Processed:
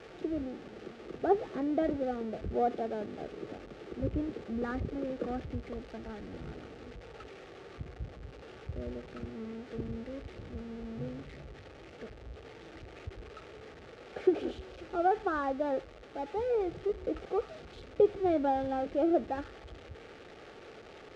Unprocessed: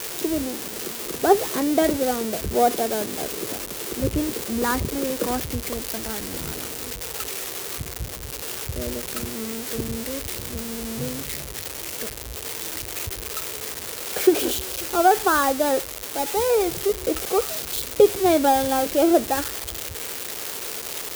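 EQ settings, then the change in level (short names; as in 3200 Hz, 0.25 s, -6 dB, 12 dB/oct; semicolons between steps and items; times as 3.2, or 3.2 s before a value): Butterworth band-stop 1000 Hz, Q 6.6; tape spacing loss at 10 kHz 41 dB; -8.0 dB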